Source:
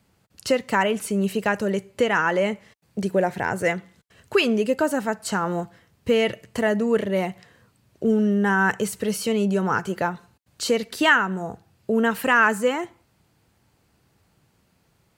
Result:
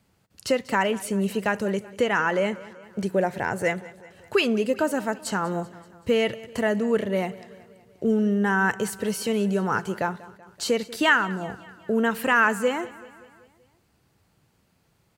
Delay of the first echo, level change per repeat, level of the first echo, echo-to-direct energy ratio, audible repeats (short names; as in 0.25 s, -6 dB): 0.191 s, -5.0 dB, -19.5 dB, -18.0 dB, 4